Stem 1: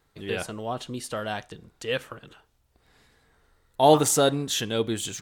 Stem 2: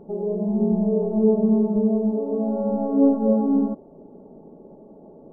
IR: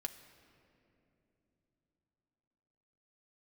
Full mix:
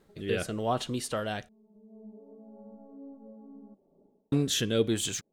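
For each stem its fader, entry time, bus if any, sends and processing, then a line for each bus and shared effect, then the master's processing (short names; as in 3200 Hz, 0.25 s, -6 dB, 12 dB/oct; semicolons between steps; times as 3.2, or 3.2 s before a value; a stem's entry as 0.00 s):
+3.0 dB, 0.00 s, muted 1.49–4.32, no send, rotary speaker horn 0.9 Hz
-14.0 dB, 0.00 s, no send, compressor 3:1, threshold -32 dBFS, peak gain reduction 14.5 dB; flange 0.64 Hz, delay 3.6 ms, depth 1.7 ms, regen +77%; auto duck -15 dB, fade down 0.25 s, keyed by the first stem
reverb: off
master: dry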